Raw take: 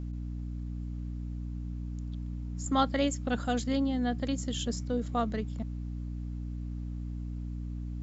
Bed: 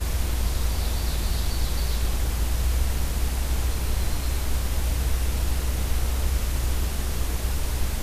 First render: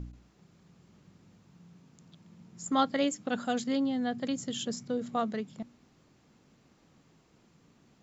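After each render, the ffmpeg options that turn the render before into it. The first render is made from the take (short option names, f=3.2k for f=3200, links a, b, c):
-af "bandreject=f=60:t=h:w=4,bandreject=f=120:t=h:w=4,bandreject=f=180:t=h:w=4,bandreject=f=240:t=h:w=4,bandreject=f=300:t=h:w=4"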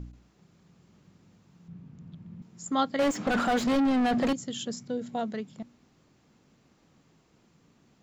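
-filter_complex "[0:a]asettb=1/sr,asplit=3[a][b][c];[a]atrim=end=1.684[d];[b]atrim=start=1.68:end=2.42,asetpts=PTS-STARTPTS,afade=t=in:d=0.004:c=qsin,afade=t=out:st=0.736:d=0.004:c=qsin,bass=f=250:g=14,treble=f=4k:g=-13[e];[c]atrim=start=2.416[f];[d][e]acrossfade=d=0.004:c1=hsin:c2=qsin[g];[g][f]acrossfade=d=0.004:c1=qsin:c2=hsin,asettb=1/sr,asplit=3[h][i][j];[h]atrim=end=2.994[k];[i]atrim=start=2.99:end=4.33,asetpts=PTS-STARTPTS,afade=t=in:d=0.004:c=qsin,afade=t=out:st=1.336:d=0.004:c=qsin,asplit=2[l][m];[m]highpass=f=720:p=1,volume=34dB,asoftclip=type=tanh:threshold=-17dB[n];[l][n]amix=inputs=2:normalize=0,lowpass=f=1.3k:p=1,volume=-6dB[o];[j]atrim=start=4.326[p];[k][o]acrossfade=d=0.004:c1=hsin:c2=qsin[q];[q][p]acrossfade=d=0.004:c1=qsin:c2=hsin,asettb=1/sr,asplit=3[r][s][t];[r]atrim=end=4.894[u];[s]atrim=start=4.89:end=5.32,asetpts=PTS-STARTPTS,afade=t=in:d=0.004:c=qsin,afade=t=out:st=0.426:d=0.004:c=qsin,asuperstop=centerf=1200:order=4:qfactor=6.5[v];[t]atrim=start=5.316[w];[u][v]acrossfade=d=0.004:c1=hsin:c2=qsin[x];[x][w]acrossfade=d=0.004:c1=qsin:c2=hsin"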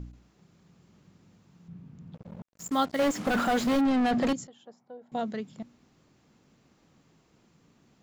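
-filter_complex "[0:a]asettb=1/sr,asplit=3[a][b][c];[a]atrim=end=2.144[d];[b]atrim=start=2.14:end=3.81,asetpts=PTS-STARTPTS,afade=t=in:d=0.004:c=qsin,afade=t=out:st=1.666:d=0.004:c=qsin,acrusher=bits=6:mix=0:aa=0.5[e];[c]atrim=start=3.806[f];[d][e]acrossfade=d=0.004:c1=hsin:c2=qsin[g];[g][f]acrossfade=d=0.004:c1=qsin:c2=hsin,asettb=1/sr,asplit=3[h][i][j];[h]atrim=end=4.474[k];[i]atrim=start=4.47:end=5.12,asetpts=PTS-STARTPTS,afade=t=in:d=0.004:c=qsin,afade=t=out:st=0.646:d=0.004:c=qsin,bandpass=f=810:t=q:w=3.3[l];[j]atrim=start=5.116[m];[k][l]acrossfade=d=0.004:c1=hsin:c2=qsin[n];[n][m]acrossfade=d=0.004:c1=qsin:c2=hsin"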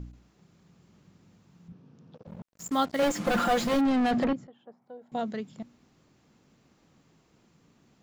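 -filter_complex "[0:a]asettb=1/sr,asplit=3[a][b][c];[a]atrim=end=1.724[d];[b]atrim=start=1.72:end=2.27,asetpts=PTS-STARTPTS,afade=t=in:d=0.004:c=qsin,afade=t=out:st=0.546:d=0.004:c=qsin,highpass=170,equalizer=f=180:t=q:w=4:g=-8,equalizer=f=480:t=q:w=4:g=6,equalizer=f=2.1k:t=q:w=4:g=-6,equalizer=f=5.6k:t=q:w=4:g=4,lowpass=f=6.4k:w=0.5412,lowpass=f=6.4k:w=1.3066[e];[c]atrim=start=2.266[f];[d][e]acrossfade=d=0.004:c1=hsin:c2=qsin[g];[g][f]acrossfade=d=0.004:c1=qsin:c2=hsin,asettb=1/sr,asplit=3[h][i][j];[h]atrim=end=3.024[k];[i]atrim=start=3.02:end=3.74,asetpts=PTS-STARTPTS,afade=t=in:d=0.004:c=qsin,afade=t=out:st=0.716:d=0.004:c=qsin,aecho=1:1:5.8:0.65,atrim=end_sample=31752[l];[j]atrim=start=3.736[m];[k][l]acrossfade=d=0.004:c1=hsin:c2=qsin[n];[n][m]acrossfade=d=0.004:c1=qsin:c2=hsin,asettb=1/sr,asplit=3[o][p][q];[o]atrim=end=4.244[r];[p]atrim=start=4.24:end=4.82,asetpts=PTS-STARTPTS,afade=t=in:d=0.004:c=qsin,afade=t=out:st=0.576:d=0.004:c=qsin,lowpass=2k[s];[q]atrim=start=4.816[t];[r][s]acrossfade=d=0.004:c1=hsin:c2=qsin[u];[u][t]acrossfade=d=0.004:c1=qsin:c2=hsin"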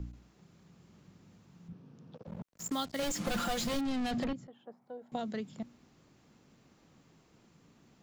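-filter_complex "[0:a]acrossover=split=150|3000[a][b][c];[b]acompressor=threshold=-34dB:ratio=6[d];[a][d][c]amix=inputs=3:normalize=0"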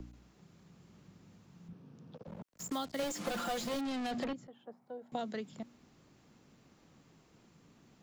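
-filter_complex "[0:a]acrossover=split=250|1000[a][b][c];[a]acompressor=threshold=-49dB:ratio=6[d];[c]alimiter=level_in=9.5dB:limit=-24dB:level=0:latency=1:release=56,volume=-9.5dB[e];[d][b][e]amix=inputs=3:normalize=0"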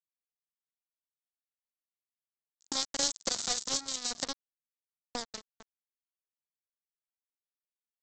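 -af "aresample=16000,acrusher=bits=4:mix=0:aa=0.5,aresample=44100,aexciter=amount=5.6:drive=7.9:freq=3.8k"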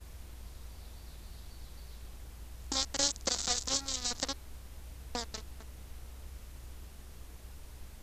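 -filter_complex "[1:a]volume=-23dB[a];[0:a][a]amix=inputs=2:normalize=0"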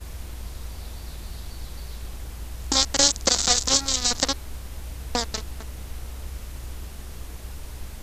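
-af "volume=12dB,alimiter=limit=-2dB:level=0:latency=1"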